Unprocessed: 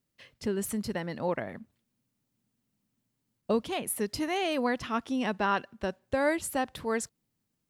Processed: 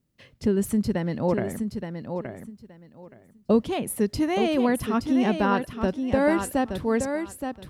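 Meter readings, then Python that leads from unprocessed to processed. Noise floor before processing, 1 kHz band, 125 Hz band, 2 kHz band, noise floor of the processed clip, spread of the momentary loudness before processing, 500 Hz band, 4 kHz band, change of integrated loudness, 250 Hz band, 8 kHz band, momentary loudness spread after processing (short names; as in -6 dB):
-81 dBFS, +3.5 dB, +11.0 dB, +1.5 dB, -58 dBFS, 9 LU, +6.5 dB, +1.0 dB, +6.0 dB, +9.5 dB, +0.5 dB, 11 LU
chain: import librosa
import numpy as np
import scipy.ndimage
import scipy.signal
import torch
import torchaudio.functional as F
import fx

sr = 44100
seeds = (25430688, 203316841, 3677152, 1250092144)

p1 = fx.low_shelf(x, sr, hz=480.0, db=11.5)
y = p1 + fx.echo_feedback(p1, sr, ms=872, feedback_pct=18, wet_db=-7.0, dry=0)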